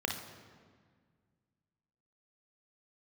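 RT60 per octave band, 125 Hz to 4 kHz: 2.6, 2.4, 1.8, 1.7, 1.5, 1.2 seconds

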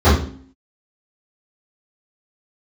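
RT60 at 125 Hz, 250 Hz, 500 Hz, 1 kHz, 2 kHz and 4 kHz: 0.55, 0.80, 0.50, 0.45, 0.40, 0.40 seconds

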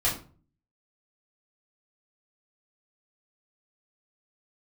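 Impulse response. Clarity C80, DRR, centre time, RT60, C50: 13.5 dB, −7.5 dB, 27 ms, 0.40 s, 8.5 dB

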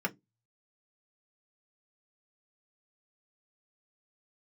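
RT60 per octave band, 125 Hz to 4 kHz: 0.30, 0.25, 0.20, 0.10, 0.10, 0.15 seconds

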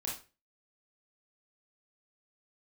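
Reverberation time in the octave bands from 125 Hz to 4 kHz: 0.40, 0.35, 0.35, 0.30, 0.30, 0.30 seconds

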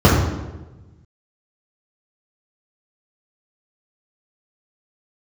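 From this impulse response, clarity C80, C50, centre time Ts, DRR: 4.0 dB, 1.5 dB, 63 ms, −7.5 dB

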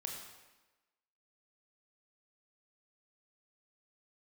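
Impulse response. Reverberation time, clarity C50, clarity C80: 1.1 s, 3.5 dB, 5.0 dB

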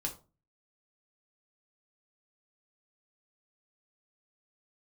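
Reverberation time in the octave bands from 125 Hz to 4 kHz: 0.55, 0.45, 0.35, 0.30, 0.25, 0.20 seconds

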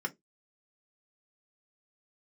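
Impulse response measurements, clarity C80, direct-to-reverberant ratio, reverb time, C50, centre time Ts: 36.0 dB, 1.5 dB, 0.20 s, 24.5 dB, 4 ms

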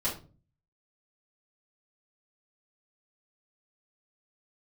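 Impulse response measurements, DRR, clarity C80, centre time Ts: −8.5 dB, 15.0 dB, 24 ms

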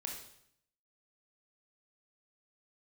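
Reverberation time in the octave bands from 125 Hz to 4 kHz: 0.90, 0.80, 0.70, 0.70, 0.65, 0.65 seconds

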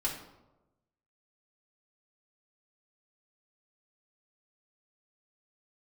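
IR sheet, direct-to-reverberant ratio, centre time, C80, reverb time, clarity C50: −4.0 dB, 30 ms, 9.0 dB, 1.0 s, 6.0 dB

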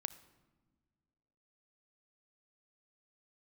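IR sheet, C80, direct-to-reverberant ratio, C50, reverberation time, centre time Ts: 17.0 dB, 12.5 dB, 15.5 dB, non-exponential decay, 5 ms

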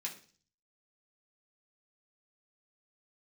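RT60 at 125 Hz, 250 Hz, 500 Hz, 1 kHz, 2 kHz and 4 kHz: 0.75, 0.55, 0.45, 0.40, 0.40, 0.55 seconds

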